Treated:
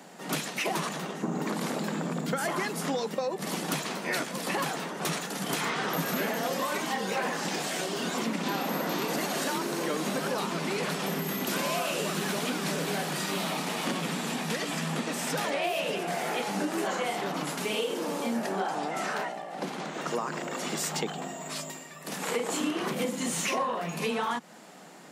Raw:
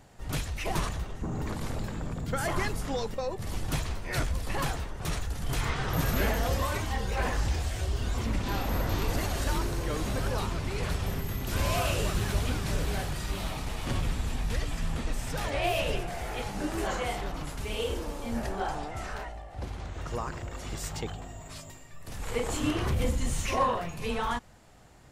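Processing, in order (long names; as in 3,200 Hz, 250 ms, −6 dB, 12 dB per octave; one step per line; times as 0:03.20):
Butterworth high-pass 160 Hz 72 dB per octave
downward compressor, threshold −36 dBFS, peak gain reduction 14 dB
level +9 dB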